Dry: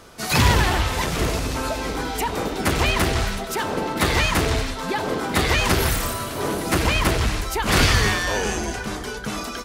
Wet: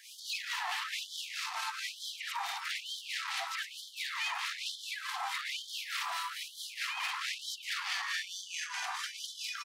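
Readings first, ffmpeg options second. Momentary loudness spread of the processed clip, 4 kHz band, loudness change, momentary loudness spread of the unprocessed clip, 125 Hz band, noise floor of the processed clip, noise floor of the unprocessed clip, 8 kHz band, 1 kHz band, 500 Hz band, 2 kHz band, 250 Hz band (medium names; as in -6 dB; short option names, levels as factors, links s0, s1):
5 LU, -10.0 dB, -14.5 dB, 9 LU, under -40 dB, -50 dBFS, -31 dBFS, -14.0 dB, -15.0 dB, -34.0 dB, -12.5 dB, under -40 dB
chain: -filter_complex "[0:a]bandreject=f=1500:w=12,asplit=2[s0][s1];[s1]aecho=0:1:111:0.473[s2];[s0][s2]amix=inputs=2:normalize=0,acrossover=split=730|5400[s3][s4][s5];[s3]acompressor=threshold=0.0316:ratio=4[s6];[s4]acompressor=threshold=0.0562:ratio=4[s7];[s5]acompressor=threshold=0.00631:ratio=4[s8];[s6][s7][s8]amix=inputs=3:normalize=0,alimiter=level_in=1.19:limit=0.0631:level=0:latency=1:release=15,volume=0.841,acrossover=split=6600[s9][s10];[s10]acompressor=threshold=0.00316:ratio=4:attack=1:release=60[s11];[s9][s11]amix=inputs=2:normalize=0,acrossover=split=1500[s12][s13];[s12]aeval=exprs='val(0)*(1-0.7/2+0.7/2*cos(2*PI*4.6*n/s))':c=same[s14];[s13]aeval=exprs='val(0)*(1-0.7/2-0.7/2*cos(2*PI*4.6*n/s))':c=same[s15];[s14][s15]amix=inputs=2:normalize=0,asoftclip=type=tanh:threshold=0.0447,aeval=exprs='0.0447*(cos(1*acos(clip(val(0)/0.0447,-1,1)))-cos(1*PI/2))+0.00708*(cos(2*acos(clip(val(0)/0.0447,-1,1)))-cos(2*PI/2))':c=same,afftfilt=real='re*gte(b*sr/1024,670*pow(3100/670,0.5+0.5*sin(2*PI*1.1*pts/sr)))':imag='im*gte(b*sr/1024,670*pow(3100/670,0.5+0.5*sin(2*PI*1.1*pts/sr)))':win_size=1024:overlap=0.75,volume=1.58"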